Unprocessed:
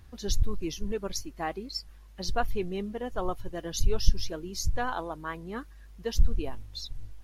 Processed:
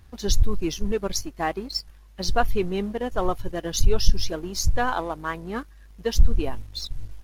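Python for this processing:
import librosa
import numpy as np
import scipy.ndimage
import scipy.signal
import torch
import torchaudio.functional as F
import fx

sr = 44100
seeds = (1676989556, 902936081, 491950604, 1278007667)

y = fx.leveller(x, sr, passes=1)
y = y * 10.0 ** (3.0 / 20.0)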